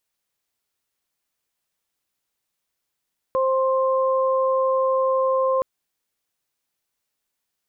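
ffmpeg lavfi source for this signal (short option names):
-f lavfi -i "aevalsrc='0.119*sin(2*PI*526*t)+0.0708*sin(2*PI*1052*t)':d=2.27:s=44100"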